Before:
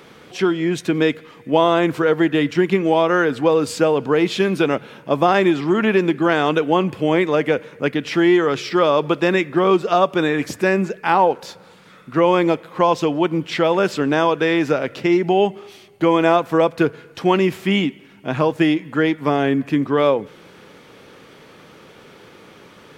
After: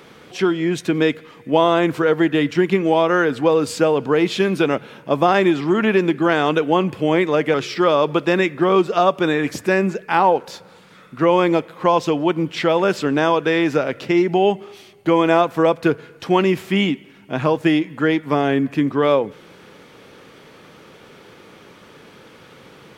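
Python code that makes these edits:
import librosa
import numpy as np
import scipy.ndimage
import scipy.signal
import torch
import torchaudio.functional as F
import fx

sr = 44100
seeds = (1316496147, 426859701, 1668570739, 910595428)

y = fx.edit(x, sr, fx.cut(start_s=7.54, length_s=0.95), tone=tone)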